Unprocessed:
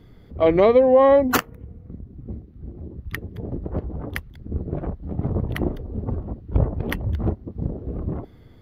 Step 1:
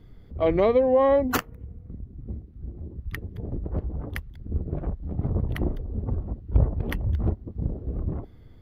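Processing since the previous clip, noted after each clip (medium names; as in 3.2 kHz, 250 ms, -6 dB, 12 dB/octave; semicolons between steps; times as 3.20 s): bass shelf 81 Hz +10 dB; trim -5.5 dB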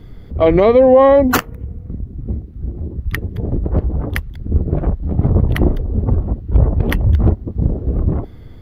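loudness maximiser +13.5 dB; trim -1 dB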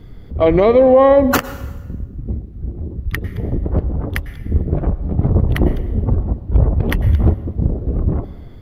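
plate-style reverb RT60 1.1 s, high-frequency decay 0.9×, pre-delay 90 ms, DRR 15 dB; trim -1 dB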